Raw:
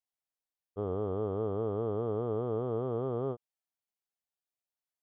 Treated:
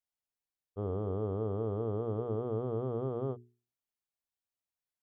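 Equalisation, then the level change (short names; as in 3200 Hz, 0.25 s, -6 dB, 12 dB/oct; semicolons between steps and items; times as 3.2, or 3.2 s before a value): low shelf 220 Hz +7.5 dB; notches 60/120/180/240/300/360/420 Hz; -3.5 dB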